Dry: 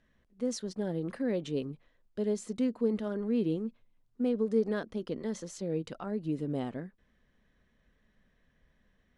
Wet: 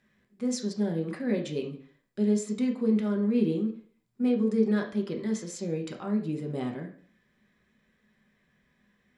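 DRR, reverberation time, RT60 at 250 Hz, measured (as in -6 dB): 2.0 dB, 0.50 s, 0.50 s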